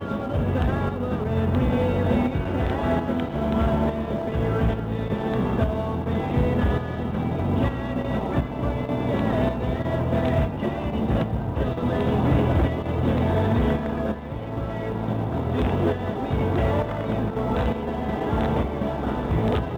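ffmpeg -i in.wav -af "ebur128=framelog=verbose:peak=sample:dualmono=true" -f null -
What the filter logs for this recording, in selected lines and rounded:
Integrated loudness:
  I:         -21.5 LUFS
  Threshold: -31.5 LUFS
Loudness range:
  LRA:         1.8 LU
  Threshold: -41.5 LUFS
  LRA low:   -22.3 LUFS
  LRA high:  -20.5 LUFS
Sample peak:
  Peak:      -10.9 dBFS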